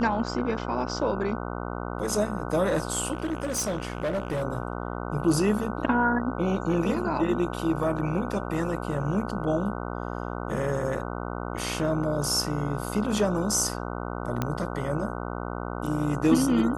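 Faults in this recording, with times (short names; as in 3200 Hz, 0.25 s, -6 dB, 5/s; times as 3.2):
buzz 60 Hz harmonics 25 -33 dBFS
3.13–4.43 clipped -24 dBFS
14.42 pop -13 dBFS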